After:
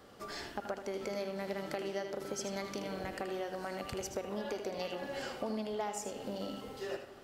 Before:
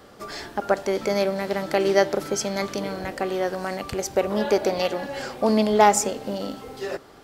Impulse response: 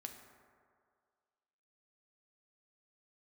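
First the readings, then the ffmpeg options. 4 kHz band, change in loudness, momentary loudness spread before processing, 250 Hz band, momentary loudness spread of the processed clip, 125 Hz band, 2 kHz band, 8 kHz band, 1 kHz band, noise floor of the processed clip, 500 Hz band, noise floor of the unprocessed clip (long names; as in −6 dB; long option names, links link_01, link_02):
−12.5 dB, −15.5 dB, 14 LU, −14.5 dB, 4 LU, −13.0 dB, −14.0 dB, −15.5 dB, −17.5 dB, −51 dBFS, −15.5 dB, −48 dBFS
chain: -filter_complex "[0:a]acompressor=threshold=-27dB:ratio=6,asplit=2[link_01][link_02];[link_02]equalizer=frequency=2900:width=6.1:gain=13[link_03];[1:a]atrim=start_sample=2205,adelay=78[link_04];[link_03][link_04]afir=irnorm=-1:irlink=0,volume=-3.5dB[link_05];[link_01][link_05]amix=inputs=2:normalize=0,volume=-8.5dB"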